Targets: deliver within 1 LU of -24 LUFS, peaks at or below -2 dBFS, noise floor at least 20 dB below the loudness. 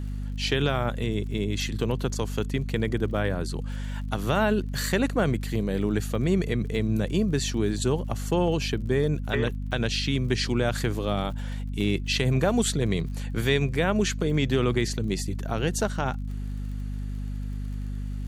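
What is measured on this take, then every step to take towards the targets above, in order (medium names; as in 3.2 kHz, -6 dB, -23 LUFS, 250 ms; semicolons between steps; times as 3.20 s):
tick rate 44 per s; hum 50 Hz; highest harmonic 250 Hz; hum level -29 dBFS; loudness -27.0 LUFS; peak level -10.5 dBFS; loudness target -24.0 LUFS
-> de-click; hum notches 50/100/150/200/250 Hz; trim +3 dB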